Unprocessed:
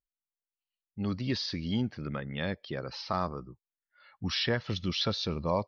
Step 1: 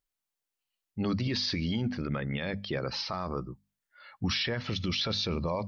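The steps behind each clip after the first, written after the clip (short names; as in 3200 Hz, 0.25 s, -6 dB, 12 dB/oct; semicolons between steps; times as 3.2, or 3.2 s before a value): notches 50/100/150/200/250 Hz; dynamic EQ 2300 Hz, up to +5 dB, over -54 dBFS, Q 4.7; limiter -28 dBFS, peak gain reduction 12 dB; gain +6.5 dB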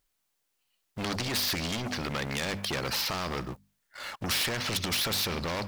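sample leveller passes 2; spectral compressor 2:1; gain +5.5 dB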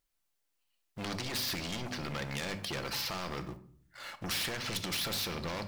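shoebox room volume 720 m³, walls furnished, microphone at 0.78 m; gain -6 dB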